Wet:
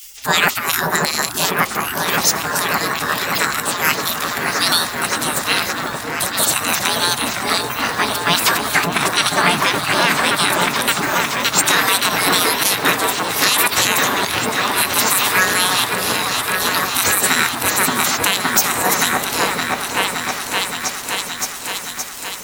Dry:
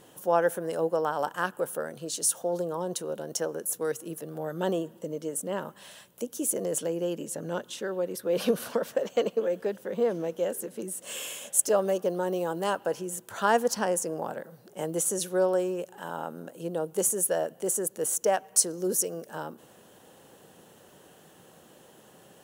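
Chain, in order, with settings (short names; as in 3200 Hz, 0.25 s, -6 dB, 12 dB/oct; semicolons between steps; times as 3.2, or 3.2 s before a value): spectral gate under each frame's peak -25 dB weak; formant shift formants +5 st; repeats that get brighter 0.569 s, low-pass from 750 Hz, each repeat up 1 oct, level 0 dB; maximiser +33.5 dB; gain -1 dB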